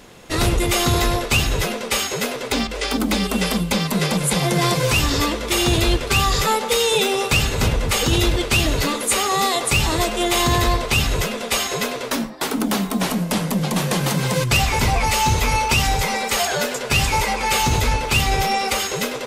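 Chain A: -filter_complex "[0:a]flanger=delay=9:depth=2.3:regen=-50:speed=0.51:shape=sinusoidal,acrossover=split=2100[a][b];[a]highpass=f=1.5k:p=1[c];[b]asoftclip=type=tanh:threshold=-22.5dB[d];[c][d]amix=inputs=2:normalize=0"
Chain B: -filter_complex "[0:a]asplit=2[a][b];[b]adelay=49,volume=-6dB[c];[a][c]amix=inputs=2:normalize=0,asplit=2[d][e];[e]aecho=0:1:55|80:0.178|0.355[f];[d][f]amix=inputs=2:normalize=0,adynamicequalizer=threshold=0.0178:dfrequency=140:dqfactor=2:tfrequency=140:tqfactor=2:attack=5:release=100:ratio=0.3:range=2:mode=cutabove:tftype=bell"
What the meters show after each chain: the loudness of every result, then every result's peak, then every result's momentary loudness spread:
-27.5, -17.5 LUFS; -16.0, -3.5 dBFS; 6, 5 LU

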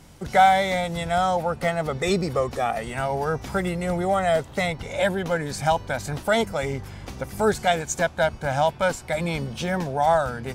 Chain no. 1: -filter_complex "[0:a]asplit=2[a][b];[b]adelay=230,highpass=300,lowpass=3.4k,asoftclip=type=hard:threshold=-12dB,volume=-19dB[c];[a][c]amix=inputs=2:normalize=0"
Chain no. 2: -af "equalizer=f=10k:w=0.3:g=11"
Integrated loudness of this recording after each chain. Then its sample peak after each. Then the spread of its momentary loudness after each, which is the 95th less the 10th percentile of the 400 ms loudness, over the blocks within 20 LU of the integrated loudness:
-24.0, -22.5 LUFS; -4.0, -2.5 dBFS; 6, 7 LU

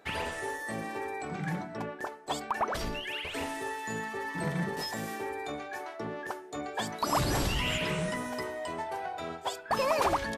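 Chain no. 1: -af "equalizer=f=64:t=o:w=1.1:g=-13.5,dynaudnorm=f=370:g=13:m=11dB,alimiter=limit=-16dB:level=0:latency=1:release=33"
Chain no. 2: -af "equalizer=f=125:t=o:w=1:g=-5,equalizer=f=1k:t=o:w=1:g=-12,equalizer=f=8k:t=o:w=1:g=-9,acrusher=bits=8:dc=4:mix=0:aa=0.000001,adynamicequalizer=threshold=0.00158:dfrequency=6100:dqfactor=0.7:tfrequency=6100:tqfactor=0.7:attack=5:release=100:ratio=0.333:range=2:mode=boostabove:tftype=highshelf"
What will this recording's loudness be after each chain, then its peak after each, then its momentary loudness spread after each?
-27.0, -37.0 LUFS; -16.0, -18.5 dBFS; 11, 9 LU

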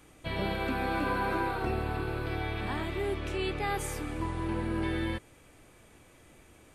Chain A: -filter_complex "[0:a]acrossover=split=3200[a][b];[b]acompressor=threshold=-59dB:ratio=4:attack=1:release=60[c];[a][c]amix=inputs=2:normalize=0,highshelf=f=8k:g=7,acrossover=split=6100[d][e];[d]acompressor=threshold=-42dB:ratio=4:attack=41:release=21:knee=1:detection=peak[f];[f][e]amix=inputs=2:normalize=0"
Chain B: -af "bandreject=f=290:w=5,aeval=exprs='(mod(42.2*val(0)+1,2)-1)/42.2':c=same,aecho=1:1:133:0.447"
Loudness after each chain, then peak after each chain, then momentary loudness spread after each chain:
-38.0, -35.0 LUFS; -24.5, -29.5 dBFS; 20, 3 LU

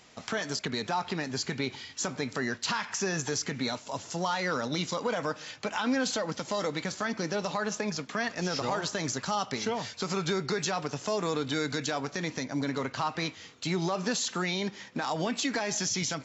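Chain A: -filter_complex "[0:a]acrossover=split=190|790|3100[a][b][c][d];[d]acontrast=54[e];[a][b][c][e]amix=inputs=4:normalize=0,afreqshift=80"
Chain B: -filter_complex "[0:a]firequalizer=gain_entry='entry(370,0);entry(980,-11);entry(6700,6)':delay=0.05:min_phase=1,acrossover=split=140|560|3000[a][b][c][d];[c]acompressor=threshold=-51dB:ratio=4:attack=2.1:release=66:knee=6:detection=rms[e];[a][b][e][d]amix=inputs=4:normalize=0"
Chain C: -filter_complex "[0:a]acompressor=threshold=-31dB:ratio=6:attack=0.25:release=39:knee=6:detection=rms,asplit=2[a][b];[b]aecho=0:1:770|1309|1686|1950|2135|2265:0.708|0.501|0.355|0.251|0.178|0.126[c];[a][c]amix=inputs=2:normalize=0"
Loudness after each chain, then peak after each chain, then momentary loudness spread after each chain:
-29.0, -33.0, -35.0 LUFS; -12.5, -13.5, -21.5 dBFS; 6, 8, 2 LU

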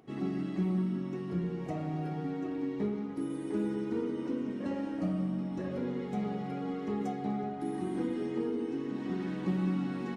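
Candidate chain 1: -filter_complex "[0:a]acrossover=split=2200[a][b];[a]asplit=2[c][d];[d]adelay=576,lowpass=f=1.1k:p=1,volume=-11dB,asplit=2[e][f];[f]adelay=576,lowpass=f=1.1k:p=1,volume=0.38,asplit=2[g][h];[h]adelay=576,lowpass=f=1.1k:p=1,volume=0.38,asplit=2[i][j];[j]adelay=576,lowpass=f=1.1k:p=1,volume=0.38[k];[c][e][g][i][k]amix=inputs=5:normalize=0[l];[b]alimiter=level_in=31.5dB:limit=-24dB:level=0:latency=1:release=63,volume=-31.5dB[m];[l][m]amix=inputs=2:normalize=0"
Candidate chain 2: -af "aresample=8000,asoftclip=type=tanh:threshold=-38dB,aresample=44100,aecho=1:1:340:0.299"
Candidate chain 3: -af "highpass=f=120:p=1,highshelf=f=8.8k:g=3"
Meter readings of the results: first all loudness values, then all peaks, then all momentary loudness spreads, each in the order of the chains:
-34.0, -41.0, -35.5 LUFS; -20.5, -35.5, -21.5 dBFS; 4, 2, 4 LU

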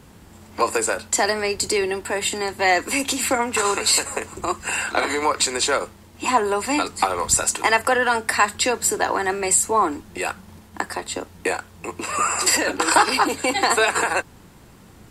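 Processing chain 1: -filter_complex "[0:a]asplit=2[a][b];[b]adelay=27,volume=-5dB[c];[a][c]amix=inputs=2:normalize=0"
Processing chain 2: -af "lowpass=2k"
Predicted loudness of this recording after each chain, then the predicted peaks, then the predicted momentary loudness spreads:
-19.5, -23.5 LUFS; -2.0, -5.0 dBFS; 10, 10 LU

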